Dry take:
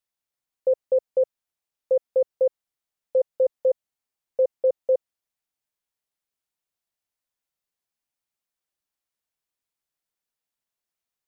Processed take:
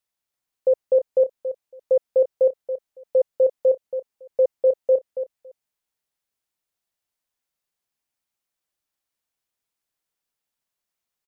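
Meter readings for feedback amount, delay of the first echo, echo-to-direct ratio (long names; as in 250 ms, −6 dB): 15%, 279 ms, −10.0 dB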